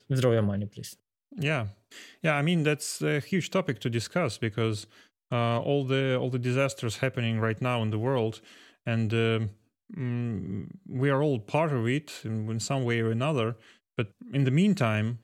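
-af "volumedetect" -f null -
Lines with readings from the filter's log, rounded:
mean_volume: -28.2 dB
max_volume: -10.1 dB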